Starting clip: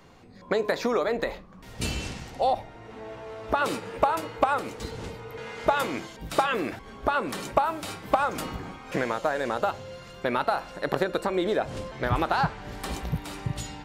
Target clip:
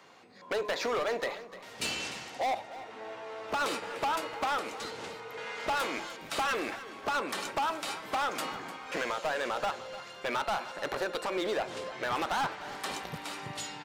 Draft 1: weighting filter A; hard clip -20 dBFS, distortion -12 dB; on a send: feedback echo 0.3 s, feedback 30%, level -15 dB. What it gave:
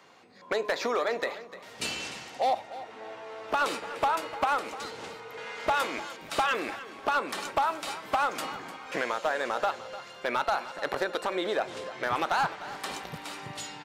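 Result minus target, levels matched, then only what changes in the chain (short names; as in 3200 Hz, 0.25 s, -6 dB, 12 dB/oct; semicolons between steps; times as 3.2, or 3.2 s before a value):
hard clip: distortion -6 dB
change: hard clip -27 dBFS, distortion -6 dB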